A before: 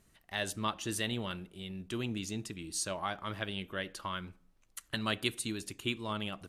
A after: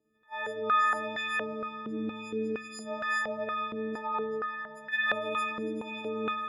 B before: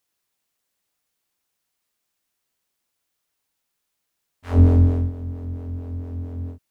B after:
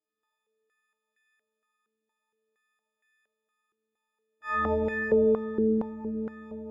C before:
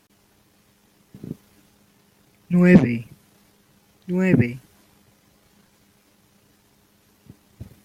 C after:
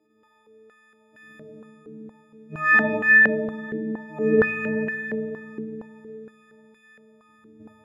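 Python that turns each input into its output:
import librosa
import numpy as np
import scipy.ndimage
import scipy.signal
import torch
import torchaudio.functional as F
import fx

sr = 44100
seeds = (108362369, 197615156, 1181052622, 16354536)

p1 = fx.freq_snap(x, sr, grid_st=6)
p2 = p1 + fx.echo_single(p1, sr, ms=382, db=-6.5, dry=0)
p3 = fx.rev_spring(p2, sr, rt60_s=3.4, pass_ms=(46, 50), chirp_ms=55, drr_db=-6.5)
p4 = fx.filter_held_bandpass(p3, sr, hz=4.3, low_hz=360.0, high_hz=1800.0)
y = p4 * 10.0 ** (3.0 / 20.0)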